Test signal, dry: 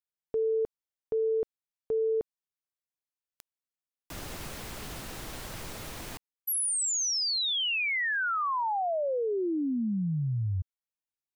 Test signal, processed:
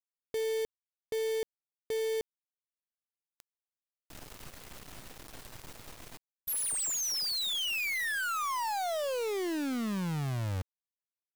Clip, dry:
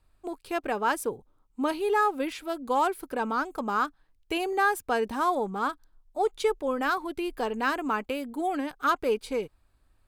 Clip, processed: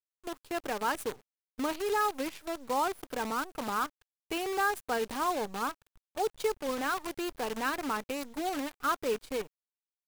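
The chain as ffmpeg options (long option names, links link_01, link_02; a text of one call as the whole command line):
ffmpeg -i in.wav -af "acrusher=bits=6:dc=4:mix=0:aa=0.000001,volume=-5dB" out.wav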